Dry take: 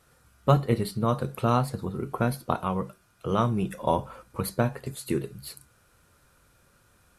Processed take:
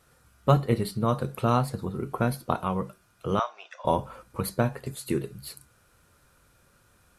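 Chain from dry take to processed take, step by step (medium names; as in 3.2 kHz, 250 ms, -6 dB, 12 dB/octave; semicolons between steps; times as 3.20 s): 3.39–3.85 s: Chebyshev band-pass 630–6200 Hz, order 4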